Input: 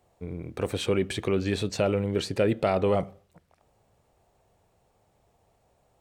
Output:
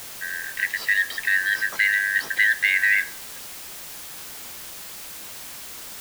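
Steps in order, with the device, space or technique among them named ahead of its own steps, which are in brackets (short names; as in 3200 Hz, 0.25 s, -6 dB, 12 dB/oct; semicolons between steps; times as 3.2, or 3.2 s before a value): 0.64–1.24 HPF 170 Hz 24 dB/oct; split-band scrambled radio (four-band scrambler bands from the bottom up 4123; BPF 380–3300 Hz; white noise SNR 12 dB); gain +4.5 dB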